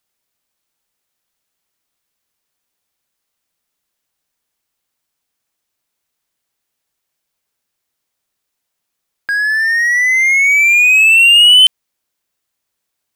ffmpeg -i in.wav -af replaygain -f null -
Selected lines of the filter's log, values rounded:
track_gain = -11.3 dB
track_peak = 0.608